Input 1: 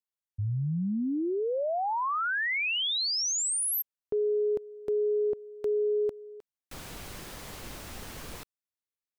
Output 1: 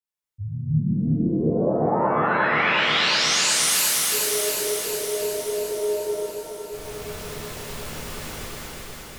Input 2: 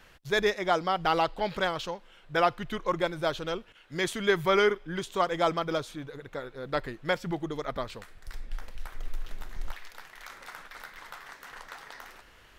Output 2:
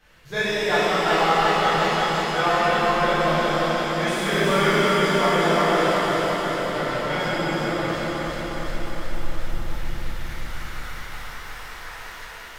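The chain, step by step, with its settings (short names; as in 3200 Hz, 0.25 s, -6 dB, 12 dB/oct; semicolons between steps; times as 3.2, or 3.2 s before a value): regenerating reverse delay 0.18 s, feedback 83%, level -2.5 dB; shimmer reverb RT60 1.9 s, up +7 st, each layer -8 dB, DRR -11 dB; gain -7.5 dB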